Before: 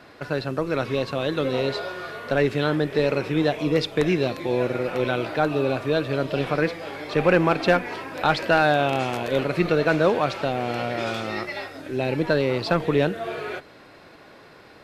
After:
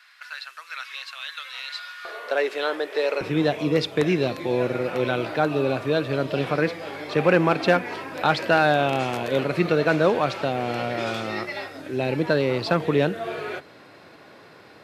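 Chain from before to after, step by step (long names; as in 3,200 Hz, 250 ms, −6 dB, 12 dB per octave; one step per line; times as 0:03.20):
high-pass filter 1,400 Hz 24 dB per octave, from 0:02.05 420 Hz, from 0:03.21 86 Hz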